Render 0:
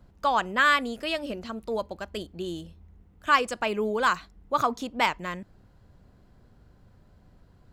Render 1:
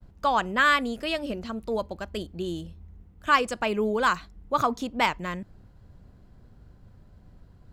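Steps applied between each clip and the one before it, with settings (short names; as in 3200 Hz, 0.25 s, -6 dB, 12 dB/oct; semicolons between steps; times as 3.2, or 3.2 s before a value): expander -55 dBFS; low shelf 230 Hz +6 dB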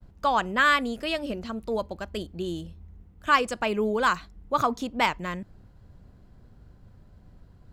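nothing audible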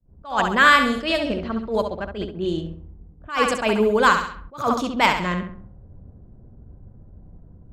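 flutter echo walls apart 11.5 m, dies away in 0.57 s; low-pass opened by the level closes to 500 Hz, open at -22.5 dBFS; attack slew limiter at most 160 dB/s; gain +6.5 dB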